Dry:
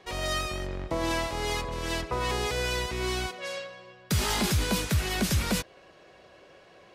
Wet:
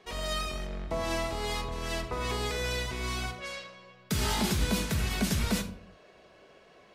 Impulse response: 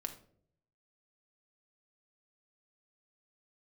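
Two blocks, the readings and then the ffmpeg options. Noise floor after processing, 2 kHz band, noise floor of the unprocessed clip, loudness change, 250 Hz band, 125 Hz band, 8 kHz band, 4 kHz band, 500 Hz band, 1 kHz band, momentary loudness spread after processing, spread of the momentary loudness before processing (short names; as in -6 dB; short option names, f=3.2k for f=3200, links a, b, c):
-58 dBFS, -3.0 dB, -55 dBFS, -2.5 dB, -1.0 dB, -2.5 dB, -3.0 dB, -2.5 dB, -3.0 dB, -3.0 dB, 10 LU, 10 LU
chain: -filter_complex "[1:a]atrim=start_sample=2205,afade=t=out:st=0.43:d=0.01,atrim=end_sample=19404[a];[0:a][a]afir=irnorm=-1:irlink=0,volume=-1dB"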